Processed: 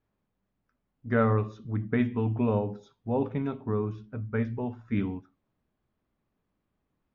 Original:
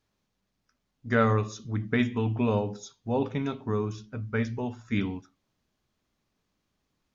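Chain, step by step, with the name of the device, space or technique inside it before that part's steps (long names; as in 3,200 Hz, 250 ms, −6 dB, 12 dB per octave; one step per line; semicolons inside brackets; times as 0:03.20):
phone in a pocket (low-pass filter 3,200 Hz 12 dB per octave; high-shelf EQ 2,200 Hz −11 dB)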